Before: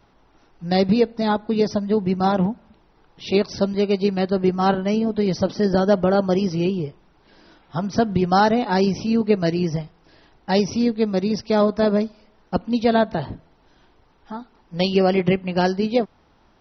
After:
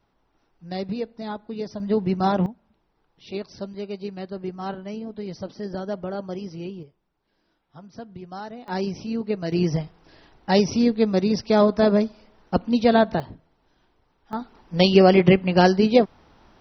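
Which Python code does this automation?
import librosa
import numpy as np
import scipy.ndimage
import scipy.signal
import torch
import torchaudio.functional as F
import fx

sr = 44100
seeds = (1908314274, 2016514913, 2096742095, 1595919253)

y = fx.gain(x, sr, db=fx.steps((0.0, -11.5), (1.8, -2.0), (2.46, -12.5), (6.83, -19.5), (8.68, -8.0), (9.52, 0.5), (13.2, -8.5), (14.33, 3.5)))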